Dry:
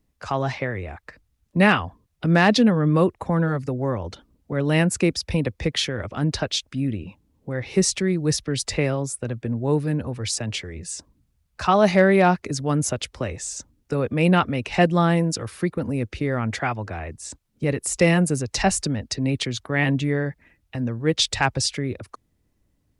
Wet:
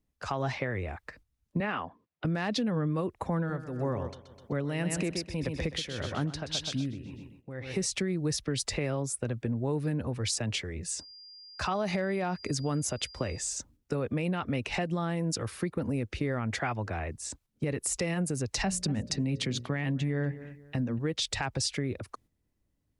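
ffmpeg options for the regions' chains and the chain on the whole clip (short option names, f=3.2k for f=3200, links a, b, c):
-filter_complex "[0:a]asettb=1/sr,asplit=3[a][b][c];[a]atrim=end=1.604[d];[b]atrim=start=1.6:end=2.25,asetpts=PTS-STARTPTS,afade=t=in:d=0.004:c=qsin,afade=t=out:st=0.646:d=0.004:c=qsin,highpass=210,lowpass=2.2k,aemphasis=mode=production:type=50fm[e];[c]atrim=start=2.246[f];[d][e]acrossfade=d=0.004:c1=hsin:c2=qsin[g];[g][f]acrossfade=d=0.004:c1=qsin:c2=hsin,asettb=1/sr,asplit=3[h][i][j];[h]atrim=end=3.374[k];[i]atrim=start=3.37:end=7.86,asetpts=PTS-STARTPTS,afade=t=in:d=0.004:c=qsin,afade=t=out:st=4.486:d=0.004:c=qsin,aecho=1:1:127|254|381|508|635:0.355|0.149|0.0626|0.0263|0.011,atrim=end_sample=198009,tremolo=f=1.8:d=0.71[l];[j]atrim=start=7.856[m];[k][l]acrossfade=d=0.004:c1=hsin:c2=qsin[n];[n][m]acrossfade=d=0.004:c1=qsin:c2=hsin,asettb=1/sr,asplit=3[o][p][q];[o]atrim=end=10.954[r];[p]atrim=start=10.95:end=13.51,asetpts=PTS-STARTPTS,afade=t=in:d=0.004:c=qsin,afade=t=out:st=2.556:d=0.004:c=qsin,agate=range=-33dB:threshold=-45dB:ratio=3:release=100:detection=peak,aeval=exprs='val(0)+0.00562*sin(2*PI*4800*n/s)':c=same[s];[q]atrim=start=13.506[t];[r][s]acrossfade=d=0.004:c1=hsin:c2=qsin[u];[u][t]acrossfade=d=0.004:c1=qsin:c2=hsin,asettb=1/sr,asplit=3[v][w][x];[v]atrim=end=18.644[y];[w]atrim=start=18.64:end=20.99,asetpts=PTS-STARTPTS,afade=t=in:d=0.004:c=qsin,afade=t=out:st=2.346:d=0.004:c=qsin,equalizer=f=180:t=o:w=0.96:g=7.5,bandreject=f=60:t=h:w=6,bandreject=f=120:t=h:w=6,bandreject=f=180:t=h:w=6,bandreject=f=240:t=h:w=6,bandreject=f=300:t=h:w=6,bandreject=f=360:t=h:w=6,bandreject=f=420:t=h:w=6,bandreject=f=480:t=h:w=6,bandreject=f=540:t=h:w=6,bandreject=f=600:t=h:w=6,asplit=2[z][aa];[aa]adelay=239,lowpass=f=2.7k:p=1,volume=-20.5dB,asplit=2[ab][ac];[ac]adelay=239,lowpass=f=2.7k:p=1,volume=0.3[ad];[z][ab][ad]amix=inputs=3:normalize=0,atrim=end_sample=103635[ae];[x]atrim=start=20.986[af];[y][ae]acrossfade=d=0.004:c1=hsin:c2=qsin[ag];[ag][af]acrossfade=d=0.004:c1=qsin:c2=hsin,agate=range=-7dB:threshold=-53dB:ratio=16:detection=peak,alimiter=limit=-15dB:level=0:latency=1:release=99,acompressor=threshold=-24dB:ratio=6,volume=-2.5dB"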